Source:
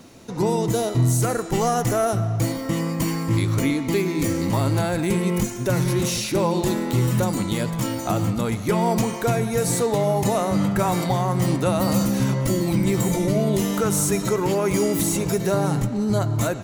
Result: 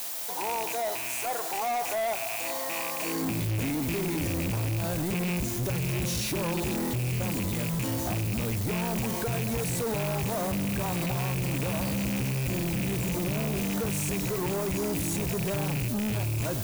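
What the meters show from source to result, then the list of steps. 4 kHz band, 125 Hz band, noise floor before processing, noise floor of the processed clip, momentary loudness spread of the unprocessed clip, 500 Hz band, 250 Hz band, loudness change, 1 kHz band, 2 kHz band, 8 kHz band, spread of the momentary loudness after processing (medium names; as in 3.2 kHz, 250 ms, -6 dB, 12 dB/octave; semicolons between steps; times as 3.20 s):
-4.5 dB, -7.5 dB, -30 dBFS, -33 dBFS, 3 LU, -10.0 dB, -8.5 dB, -7.0 dB, -8.0 dB, -3.0 dB, -6.0 dB, 1 LU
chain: rattle on loud lows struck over -23 dBFS, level -14 dBFS; bass shelf 120 Hz +9 dB; band-stop 1.3 kHz, Q 5.8; peak limiter -16 dBFS, peak gain reduction 10.5 dB; high-pass sweep 760 Hz -> 60 Hz, 2.96–3.68 s; added noise blue -34 dBFS; companded quantiser 4-bit; saturation -26.5 dBFS, distortion -8 dB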